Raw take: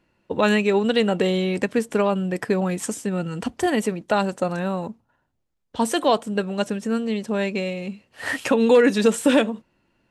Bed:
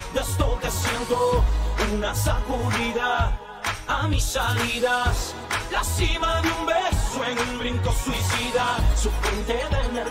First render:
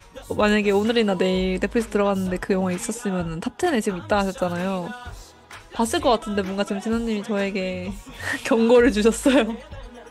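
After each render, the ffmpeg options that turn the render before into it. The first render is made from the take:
-filter_complex "[1:a]volume=0.178[s0];[0:a][s0]amix=inputs=2:normalize=0"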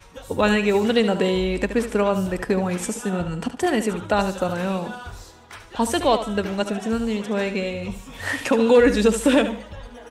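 -af "aecho=1:1:73|146|219:0.299|0.0866|0.0251"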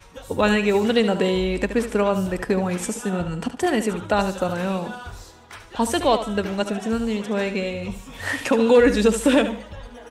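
-af anull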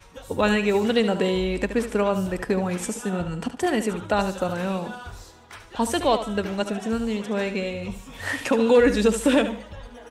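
-af "volume=0.794"

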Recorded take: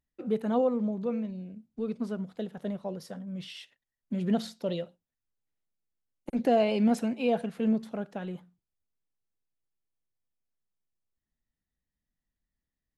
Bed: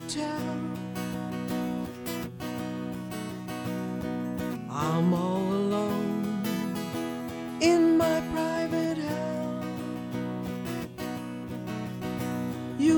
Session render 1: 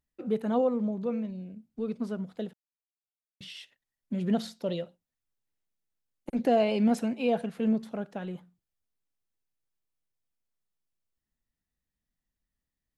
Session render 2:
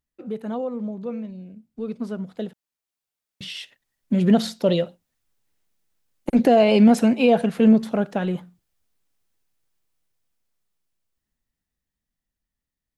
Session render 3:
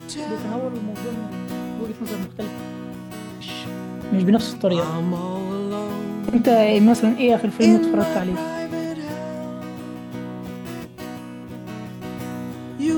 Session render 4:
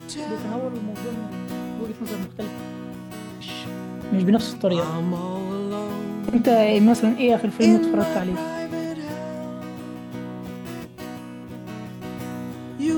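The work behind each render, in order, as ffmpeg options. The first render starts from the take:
-filter_complex "[0:a]asettb=1/sr,asplit=3[s0][s1][s2];[s0]atrim=end=2.534[s3];[s1]atrim=start=2.53:end=3.41,asetpts=PTS-STARTPTS,afade=t=in:d=0.004:c=qsin,afade=t=out:st=0.876:d=0.004:c=qsin,acrusher=bits=2:mix=0:aa=0.5[s4];[s2]atrim=start=3.406[s5];[s3][s4]acrossfade=d=0.004:c1=hsin:c2=qsin[s6];[s6][s5]acrossfade=d=0.004:c1=qsin:c2=hsin"
-af "alimiter=limit=0.106:level=0:latency=1:release=134,dynaudnorm=f=360:g=17:m=4.22"
-filter_complex "[1:a]volume=1.12[s0];[0:a][s0]amix=inputs=2:normalize=0"
-af "volume=0.841"

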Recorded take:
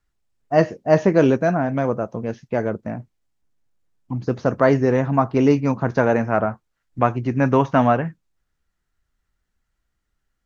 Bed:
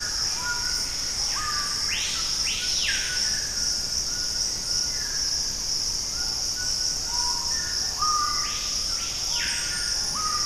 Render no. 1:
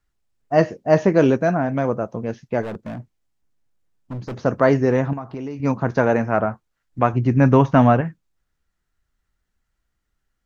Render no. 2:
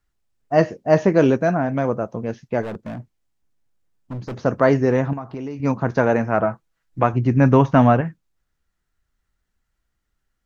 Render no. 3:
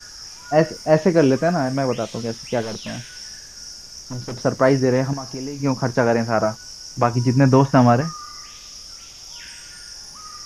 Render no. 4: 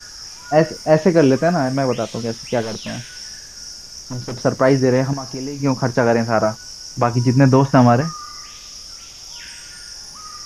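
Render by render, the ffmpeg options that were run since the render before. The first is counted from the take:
-filter_complex "[0:a]asplit=3[s0][s1][s2];[s0]afade=t=out:st=2.61:d=0.02[s3];[s1]asoftclip=type=hard:threshold=0.0473,afade=t=in:st=2.61:d=0.02,afade=t=out:st=4.38:d=0.02[s4];[s2]afade=t=in:st=4.38:d=0.02[s5];[s3][s4][s5]amix=inputs=3:normalize=0,asettb=1/sr,asplit=3[s6][s7][s8];[s6]atrim=end=5.134[s9];[s7]atrim=start=5.13:end=5.6,asetpts=PTS-STARTPTS,afade=t=in:d=0.004:c=qsin,afade=t=out:st=0.466:d=0.004:c=qsin,acompressor=threshold=0.0398:ratio=5:attack=3.2:release=140:knee=1:detection=peak[s10];[s8]atrim=start=5.596[s11];[s9][s10]acrossfade=d=0.004:c1=hsin:c2=qsin[s12];[s12][s11]acrossfade=d=0.004:c1=qsin:c2=hsin,asettb=1/sr,asplit=3[s13][s14][s15];[s13]atrim=end=7.134[s16];[s14]atrim=start=7.13:end=8.01,asetpts=PTS-STARTPTS,afade=t=in:d=0.004:c=qsin,afade=t=out:st=0.876:d=0.004:c=qsin,lowshelf=f=220:g=8.5[s17];[s15]atrim=start=8.006[s18];[s16][s17]acrossfade=d=0.004:c1=hsin:c2=qsin[s19];[s19][s18]acrossfade=d=0.004:c1=qsin:c2=hsin"
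-filter_complex "[0:a]asettb=1/sr,asplit=3[s0][s1][s2];[s0]atrim=end=6.414[s3];[s1]atrim=start=6.41:end=7.04,asetpts=PTS-STARTPTS,afade=t=in:d=0.004:c=qsin,afade=t=out:st=0.626:d=0.004:c=qsin,aecho=1:1:6.1:0.53,atrim=end_sample=27783[s4];[s2]atrim=start=7.036[s5];[s3][s4]acrossfade=d=0.004:c1=hsin:c2=qsin[s6];[s6][s5]acrossfade=d=0.004:c1=qsin:c2=hsin"
-filter_complex "[1:a]volume=0.266[s0];[0:a][s0]amix=inputs=2:normalize=0"
-af "volume=1.33,alimiter=limit=0.794:level=0:latency=1"

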